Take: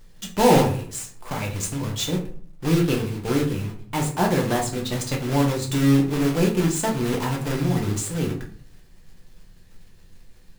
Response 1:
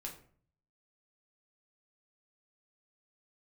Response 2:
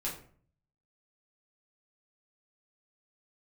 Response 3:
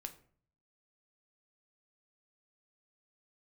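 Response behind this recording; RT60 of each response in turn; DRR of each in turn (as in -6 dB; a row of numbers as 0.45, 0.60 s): 1; 0.50, 0.50, 0.50 s; -0.5, -5.5, 6.5 dB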